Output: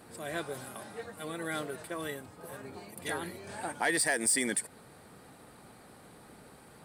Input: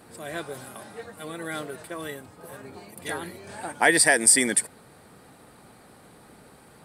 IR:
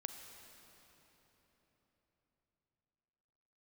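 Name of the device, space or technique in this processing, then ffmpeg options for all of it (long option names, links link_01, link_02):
soft clipper into limiter: -af "asoftclip=type=tanh:threshold=-10dB,alimiter=limit=-17.5dB:level=0:latency=1:release=175,volume=-2.5dB"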